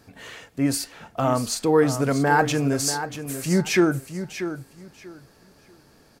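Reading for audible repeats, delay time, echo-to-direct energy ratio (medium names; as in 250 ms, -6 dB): 2, 638 ms, -10.5 dB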